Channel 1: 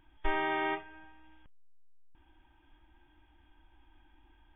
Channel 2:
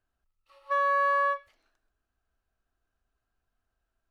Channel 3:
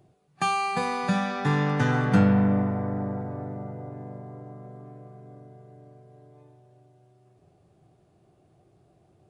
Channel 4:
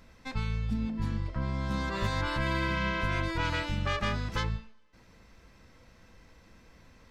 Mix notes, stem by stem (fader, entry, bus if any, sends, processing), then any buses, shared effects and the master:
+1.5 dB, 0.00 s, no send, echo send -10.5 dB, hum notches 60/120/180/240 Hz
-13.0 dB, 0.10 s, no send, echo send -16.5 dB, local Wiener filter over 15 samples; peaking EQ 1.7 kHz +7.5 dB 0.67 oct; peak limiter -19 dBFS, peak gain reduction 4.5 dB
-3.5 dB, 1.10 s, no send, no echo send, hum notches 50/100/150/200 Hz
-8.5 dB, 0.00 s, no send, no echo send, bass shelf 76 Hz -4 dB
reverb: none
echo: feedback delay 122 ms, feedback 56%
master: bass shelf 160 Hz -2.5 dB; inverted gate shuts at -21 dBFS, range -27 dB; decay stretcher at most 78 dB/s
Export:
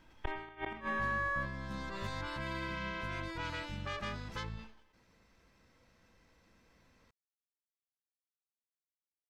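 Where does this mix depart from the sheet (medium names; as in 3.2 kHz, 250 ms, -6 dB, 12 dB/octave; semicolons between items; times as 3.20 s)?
stem 2: missing peak limiter -19 dBFS, peak gain reduction 4.5 dB; stem 3: muted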